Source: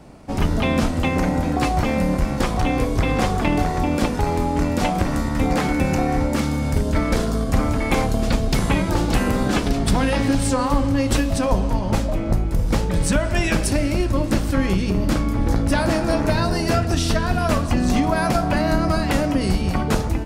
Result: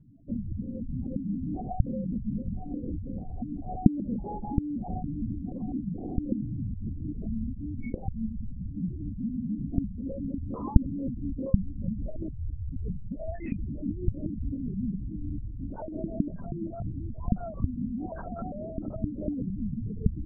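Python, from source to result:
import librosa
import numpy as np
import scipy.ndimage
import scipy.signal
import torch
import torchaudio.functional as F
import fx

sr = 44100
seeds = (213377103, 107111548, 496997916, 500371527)

y = fx.over_compress(x, sr, threshold_db=-23.0, ratio=-1.0)
y = fx.spec_topn(y, sr, count=4)
y = fx.lpc_vocoder(y, sr, seeds[0], excitation='whisper', order=8)
y = fx.dynamic_eq(y, sr, hz=210.0, q=2.4, threshold_db=-41.0, ratio=4.0, max_db=7)
y = F.gain(torch.from_numpy(y), -9.0).numpy()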